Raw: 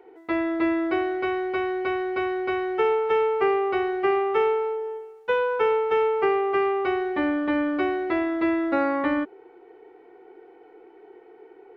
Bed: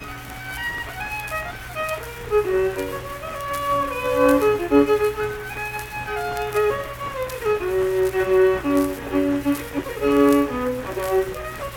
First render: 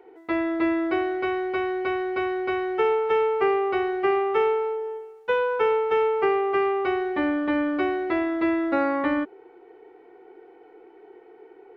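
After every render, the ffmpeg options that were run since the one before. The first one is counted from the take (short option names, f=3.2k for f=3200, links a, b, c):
-af anull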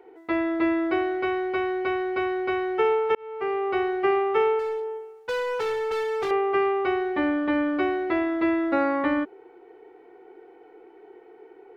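-filter_complex "[0:a]asettb=1/sr,asplit=3[a][b][c];[a]atrim=end=4.594[d];[b]atrim=start=4.59:end=6.31,asetpts=PTS-STARTPTS,afade=t=in:d=0.004:c=qsin,afade=t=out:st=1.716:d=0.004:c=qsin,asoftclip=type=hard:threshold=-25dB[e];[c]atrim=start=6.306[f];[d][e]acrossfade=d=0.004:c1=hsin:c2=qsin[g];[g][f]acrossfade=d=0.004:c1=qsin:c2=hsin,asplit=2[h][i];[h]atrim=end=3.15,asetpts=PTS-STARTPTS,afade=t=out:st=3.146:d=0.004:c=hsin[j];[i]atrim=start=3.15,asetpts=PTS-STARTPTS,afade=t=in:d=0.64[k];[j][k]concat=n=2:v=0:a=1"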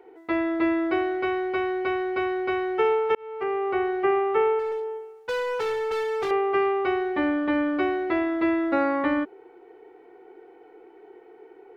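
-filter_complex "[0:a]asettb=1/sr,asplit=3[a][b][c];[a]atrim=end=3.434[d];[b]atrim=start=3.43:end=4.72,asetpts=PTS-STARTPTS,afade=t=in:d=0.004:c=qsin,afade=t=out:st=1.286:d=0.004:c=qsin,acrossover=split=2800[e][f];[f]acompressor=threshold=-56dB:ratio=4:attack=1:release=60[g];[e][g]amix=inputs=2:normalize=0[h];[c]atrim=start=4.716[i];[d][h]acrossfade=d=0.004:c1=hsin:c2=qsin[j];[j][i]acrossfade=d=0.004:c1=qsin:c2=hsin"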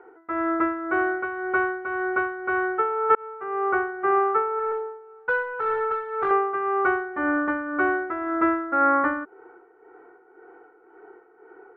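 -af "tremolo=f=1.9:d=0.66,lowpass=f=1.4k:t=q:w=5.4"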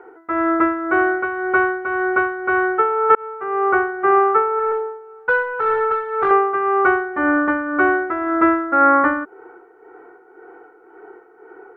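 -af "volume=6.5dB,alimiter=limit=-3dB:level=0:latency=1"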